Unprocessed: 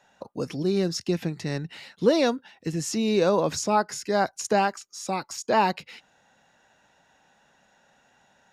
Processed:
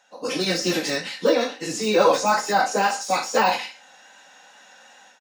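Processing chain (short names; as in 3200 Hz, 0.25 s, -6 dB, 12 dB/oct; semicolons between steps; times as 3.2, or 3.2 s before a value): spectral trails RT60 0.59 s; weighting filter A; de-esser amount 95%; HPF 41 Hz 24 dB/oct; high shelf 4100 Hz +6.5 dB; comb 3.9 ms, depth 44%; de-hum 261.9 Hz, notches 15; AGC gain up to 12.5 dB; plain phase-vocoder stretch 0.61×; wow and flutter 20 cents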